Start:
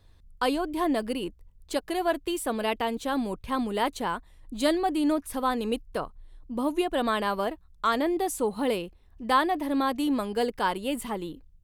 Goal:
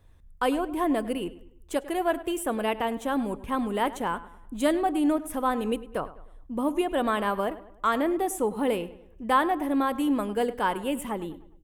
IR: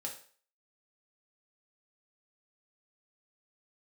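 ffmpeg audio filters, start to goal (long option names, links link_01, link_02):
-filter_complex "[0:a]equalizer=frequency=4400:width_type=o:width=0.54:gain=-13.5,asplit=2[link_01][link_02];[link_02]adelay=102,lowpass=frequency=3400:poles=1,volume=-16dB,asplit=2[link_03][link_04];[link_04]adelay=102,lowpass=frequency=3400:poles=1,volume=0.44,asplit=2[link_05][link_06];[link_06]adelay=102,lowpass=frequency=3400:poles=1,volume=0.44,asplit=2[link_07][link_08];[link_08]adelay=102,lowpass=frequency=3400:poles=1,volume=0.44[link_09];[link_01][link_03][link_05][link_07][link_09]amix=inputs=5:normalize=0,asplit=2[link_10][link_11];[1:a]atrim=start_sample=2205[link_12];[link_11][link_12]afir=irnorm=-1:irlink=0,volume=-17.5dB[link_13];[link_10][link_13]amix=inputs=2:normalize=0"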